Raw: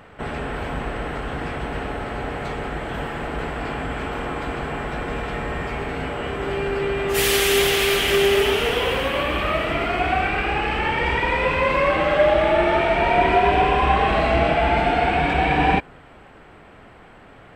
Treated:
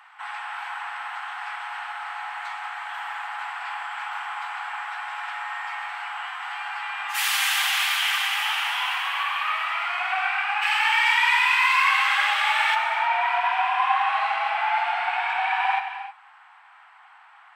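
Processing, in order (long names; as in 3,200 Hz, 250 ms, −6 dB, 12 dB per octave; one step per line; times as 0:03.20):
Butterworth high-pass 810 Hz 72 dB per octave
spectral tilt −1.5 dB per octave, from 0:10.61 +3.5 dB per octave, from 0:12.74 −3 dB per octave
reverb whose tail is shaped and stops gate 340 ms flat, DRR 6.5 dB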